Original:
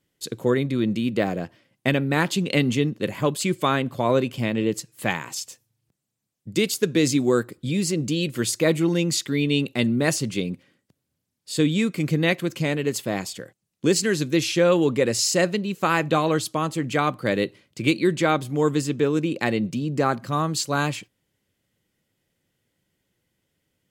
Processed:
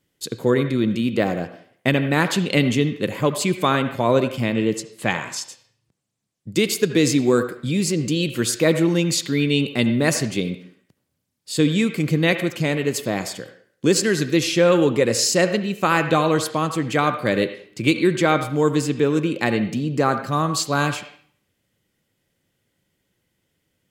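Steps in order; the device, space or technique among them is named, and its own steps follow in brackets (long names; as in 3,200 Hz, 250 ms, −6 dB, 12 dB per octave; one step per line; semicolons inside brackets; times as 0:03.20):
filtered reverb send (on a send: high-pass filter 570 Hz 6 dB per octave + low-pass filter 3,200 Hz 12 dB per octave + convolution reverb RT60 0.55 s, pre-delay 65 ms, DRR 9 dB)
0:04.75–0:06.52: on the sum: low-pass filter 9,700 Hz 12 dB per octave
level +2.5 dB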